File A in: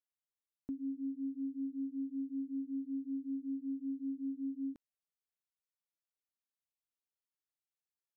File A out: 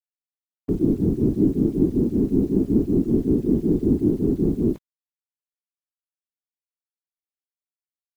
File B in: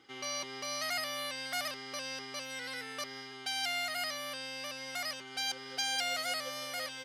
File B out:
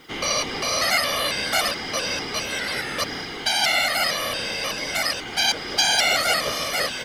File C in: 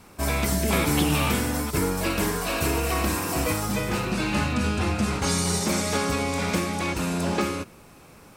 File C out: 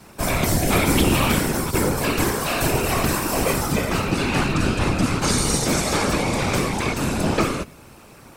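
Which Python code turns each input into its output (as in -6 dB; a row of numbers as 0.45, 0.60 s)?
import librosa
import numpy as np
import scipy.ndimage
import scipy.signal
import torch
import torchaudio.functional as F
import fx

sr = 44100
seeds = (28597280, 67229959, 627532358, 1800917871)

y = fx.octave_divider(x, sr, octaves=2, level_db=-5.0)
y = scipy.signal.sosfilt(scipy.signal.butter(2, 54.0, 'highpass', fs=sr, output='sos'), y)
y = fx.quant_dither(y, sr, seeds[0], bits=12, dither='none')
y = fx.whisperise(y, sr, seeds[1])
y = librosa.util.normalize(y) * 10.0 ** (-6 / 20.0)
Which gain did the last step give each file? +18.5, +14.0, +4.0 dB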